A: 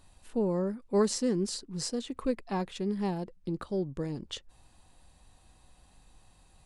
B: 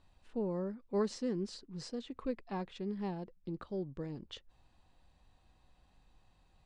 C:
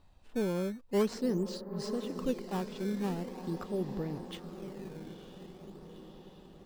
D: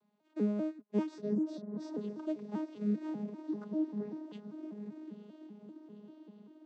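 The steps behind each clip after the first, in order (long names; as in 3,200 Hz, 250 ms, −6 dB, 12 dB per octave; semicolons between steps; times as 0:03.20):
low-pass filter 4,400 Hz 12 dB per octave; level −7 dB
feedback delay with all-pass diffusion 938 ms, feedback 55%, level −9 dB; in parallel at −4 dB: sample-and-hold swept by an LFO 13×, swing 160% 0.44 Hz
vocoder with an arpeggio as carrier bare fifth, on G#3, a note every 196 ms; level −1 dB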